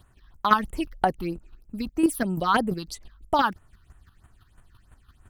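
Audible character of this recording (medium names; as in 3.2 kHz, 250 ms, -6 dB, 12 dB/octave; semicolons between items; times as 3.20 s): phasing stages 6, 3.1 Hz, lowest notch 550–5000 Hz; chopped level 5.9 Hz, depth 60%, duty 15%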